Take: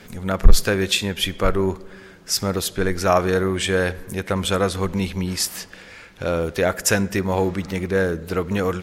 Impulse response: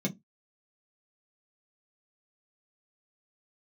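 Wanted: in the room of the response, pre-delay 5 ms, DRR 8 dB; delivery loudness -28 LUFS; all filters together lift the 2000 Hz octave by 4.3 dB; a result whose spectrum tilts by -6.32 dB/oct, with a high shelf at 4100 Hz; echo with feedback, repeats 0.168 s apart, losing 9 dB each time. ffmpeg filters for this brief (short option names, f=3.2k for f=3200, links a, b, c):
-filter_complex "[0:a]equalizer=f=2k:t=o:g=7.5,highshelf=f=4.1k:g=-8,aecho=1:1:168|336|504|672:0.355|0.124|0.0435|0.0152,asplit=2[a][b];[1:a]atrim=start_sample=2205,adelay=5[c];[b][c]afir=irnorm=-1:irlink=0,volume=-12.5dB[d];[a][d]amix=inputs=2:normalize=0,volume=-13.5dB"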